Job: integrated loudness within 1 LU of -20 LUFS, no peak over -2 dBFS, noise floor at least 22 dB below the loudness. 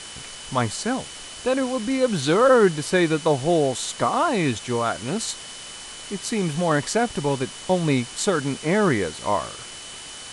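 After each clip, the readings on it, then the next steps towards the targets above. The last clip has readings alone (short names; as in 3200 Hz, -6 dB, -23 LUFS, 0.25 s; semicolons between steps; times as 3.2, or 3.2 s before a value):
steady tone 3000 Hz; tone level -42 dBFS; noise floor -38 dBFS; noise floor target -45 dBFS; loudness -22.5 LUFS; peak -5.5 dBFS; loudness target -20.0 LUFS
-> notch 3000 Hz, Q 30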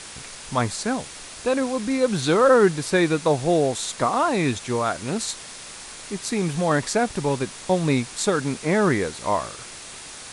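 steady tone none; noise floor -40 dBFS; noise floor target -45 dBFS
-> denoiser 6 dB, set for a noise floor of -40 dBFS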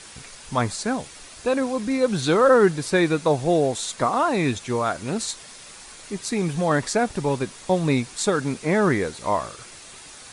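noise floor -43 dBFS; noise floor target -45 dBFS
-> denoiser 6 dB, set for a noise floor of -43 dBFS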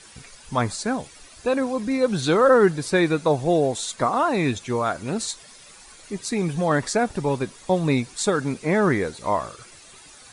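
noise floor -47 dBFS; loudness -22.5 LUFS; peak -6.0 dBFS; loudness target -20.0 LUFS
-> gain +2.5 dB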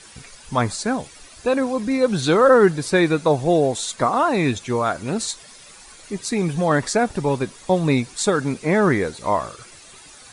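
loudness -20.0 LUFS; peak -3.5 dBFS; noise floor -45 dBFS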